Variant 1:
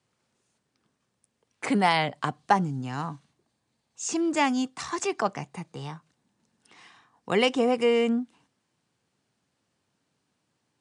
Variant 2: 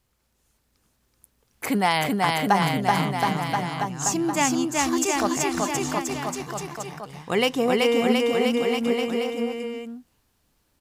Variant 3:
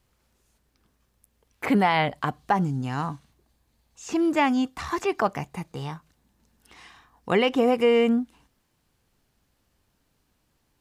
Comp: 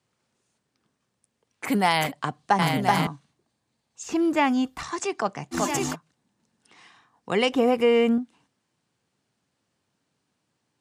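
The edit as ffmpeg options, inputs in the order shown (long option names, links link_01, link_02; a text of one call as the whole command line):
ffmpeg -i take0.wav -i take1.wav -i take2.wav -filter_complex "[1:a]asplit=3[link_01][link_02][link_03];[2:a]asplit=2[link_04][link_05];[0:a]asplit=6[link_06][link_07][link_08][link_09][link_10][link_11];[link_06]atrim=end=1.7[link_12];[link_01]atrim=start=1.64:end=2.12[link_13];[link_07]atrim=start=2.06:end=2.592[link_14];[link_02]atrim=start=2.588:end=3.072[link_15];[link_08]atrim=start=3.068:end=4.032[link_16];[link_04]atrim=start=4.028:end=4.832[link_17];[link_09]atrim=start=4.828:end=5.55[link_18];[link_03]atrim=start=5.51:end=5.96[link_19];[link_10]atrim=start=5.92:end=7.522[link_20];[link_05]atrim=start=7.518:end=8.182[link_21];[link_11]atrim=start=8.178[link_22];[link_12][link_13]acrossfade=duration=0.06:curve1=tri:curve2=tri[link_23];[link_23][link_14]acrossfade=duration=0.06:curve1=tri:curve2=tri[link_24];[link_24][link_15]acrossfade=duration=0.004:curve1=hsin:curve2=hsin[link_25];[link_25][link_16]acrossfade=duration=0.004:curve1=hsin:curve2=hsin[link_26];[link_26][link_17]acrossfade=duration=0.004:curve1=hsin:curve2=hsin[link_27];[link_27][link_18]acrossfade=duration=0.004:curve1=hsin:curve2=hsin[link_28];[link_28][link_19]acrossfade=duration=0.04:curve1=tri:curve2=tri[link_29];[link_29][link_20]acrossfade=duration=0.04:curve1=tri:curve2=tri[link_30];[link_30][link_21]acrossfade=duration=0.004:curve1=hsin:curve2=hsin[link_31];[link_31][link_22]acrossfade=duration=0.004:curve1=hsin:curve2=hsin" out.wav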